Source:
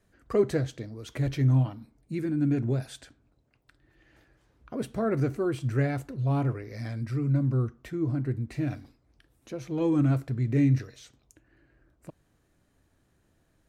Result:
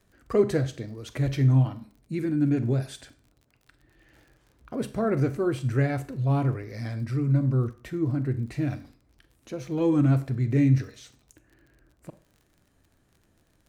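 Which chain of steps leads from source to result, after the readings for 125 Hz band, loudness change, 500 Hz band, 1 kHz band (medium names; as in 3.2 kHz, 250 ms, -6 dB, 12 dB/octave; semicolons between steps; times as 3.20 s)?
+2.5 dB, +2.5 dB, +2.0 dB, +2.5 dB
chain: Schroeder reverb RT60 0.4 s, combs from 30 ms, DRR 13 dB; crackle 45 per s -49 dBFS; trim +2 dB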